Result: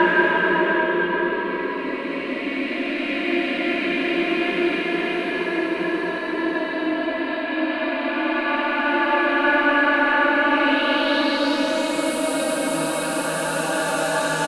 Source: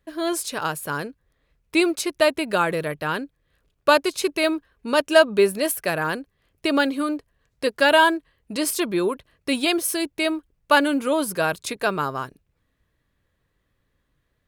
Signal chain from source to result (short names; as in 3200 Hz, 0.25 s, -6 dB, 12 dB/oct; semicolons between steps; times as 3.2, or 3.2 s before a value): on a send: echo 0.871 s -3.5 dB; on the sum: spectral repair 10–10.43, 660–3400 Hz before; in parallel at -11 dB: one-sided clip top -23.5 dBFS; on the sum: Paulstretch 5.5×, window 1.00 s, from 8.93; low-pass sweep 2000 Hz -> 8600 Hz, 10.41–12.13; gain -2.5 dB